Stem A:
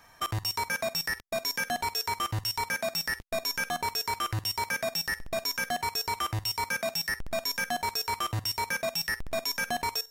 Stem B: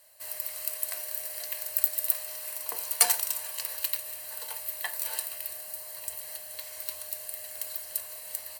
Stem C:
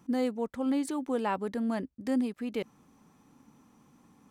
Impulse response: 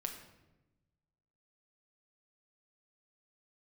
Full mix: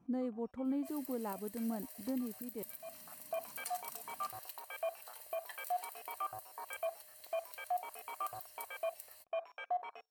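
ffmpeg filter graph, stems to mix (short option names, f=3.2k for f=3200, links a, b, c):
-filter_complex "[0:a]asplit=3[a][b][c];[a]bandpass=f=730:t=q:w=8,volume=0dB[d];[b]bandpass=f=1.09k:t=q:w=8,volume=-6dB[e];[c]bandpass=f=2.44k:t=q:w=8,volume=-9dB[f];[d][e][f]amix=inputs=3:normalize=0,afwtdn=0.00355,volume=1dB[g];[1:a]adelay=650,volume=-15.5dB[h];[2:a]tiltshelf=f=1.4k:g=8,volume=-14dB,asplit=2[i][j];[j]apad=whole_len=445716[k];[g][k]sidechaincompress=threshold=-53dB:ratio=12:attack=16:release=514[l];[l][h][i]amix=inputs=3:normalize=0,alimiter=level_in=5dB:limit=-24dB:level=0:latency=1:release=186,volume=-5dB"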